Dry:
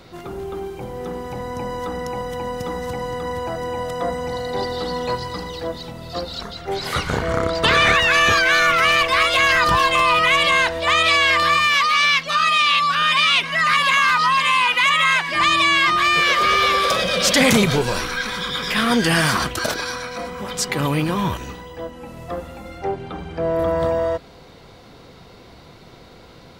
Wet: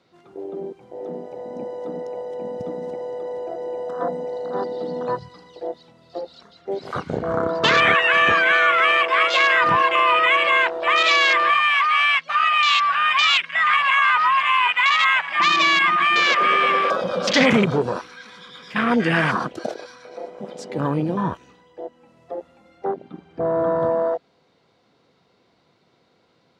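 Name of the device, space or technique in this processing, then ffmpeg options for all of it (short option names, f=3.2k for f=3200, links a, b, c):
over-cleaned archive recording: -af "highpass=150,lowpass=7.1k,afwtdn=0.1"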